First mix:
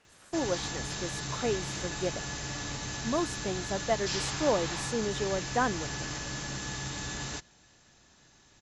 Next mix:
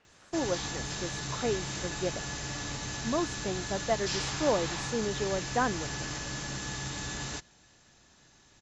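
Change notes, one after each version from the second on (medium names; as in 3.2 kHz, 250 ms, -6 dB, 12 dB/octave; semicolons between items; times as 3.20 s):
speech: add distance through air 96 m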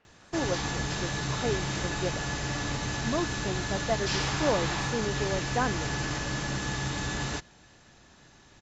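background +6.5 dB; master: add treble shelf 4.9 kHz -10 dB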